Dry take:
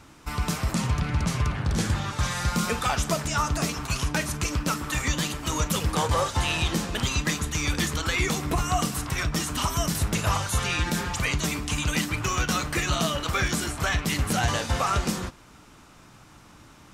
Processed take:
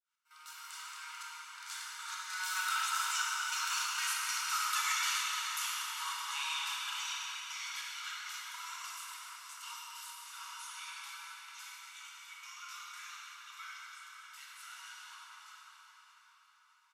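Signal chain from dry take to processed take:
fade in at the beginning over 0.73 s
source passing by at 0:04.04, 17 m/s, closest 9.3 metres
high-shelf EQ 9,300 Hz +5 dB
comb filter 1.4 ms, depth 43%
brickwall limiter −24 dBFS, peak gain reduction 11.5 dB
Chebyshev high-pass with heavy ripple 930 Hz, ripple 3 dB
gate pattern "x.xxxxxx..xx." 98 BPM −12 dB
repeating echo 617 ms, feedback 40%, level −14.5 dB
convolution reverb RT60 5.7 s, pre-delay 15 ms, DRR −5.5 dB

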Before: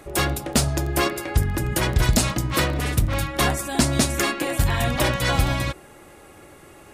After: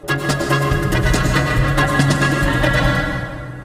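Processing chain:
low-pass filter 3,200 Hz 6 dB per octave
notch filter 2,300 Hz, Q 5.6
dynamic equaliser 2,000 Hz, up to +6 dB, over −43 dBFS, Q 1.6
comb filter 6.6 ms, depth 82%
tempo change 1.9×
dense smooth reverb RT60 2.1 s, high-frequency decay 0.6×, pre-delay 90 ms, DRR 2 dB
level +2.5 dB

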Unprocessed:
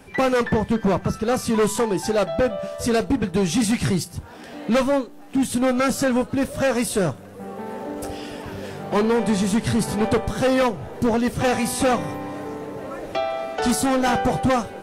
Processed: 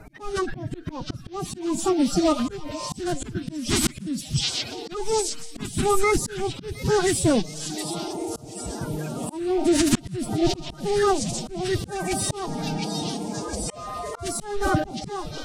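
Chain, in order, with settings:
spectral magnitudes quantised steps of 30 dB
phase-vocoder pitch shift with formants kept +8.5 semitones
bass and treble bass +10 dB, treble +2 dB
echo through a band-pass that steps 683 ms, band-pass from 4,100 Hz, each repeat 0.7 octaves, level 0 dB
wrong playback speed 25 fps video run at 24 fps
volume swells 389 ms

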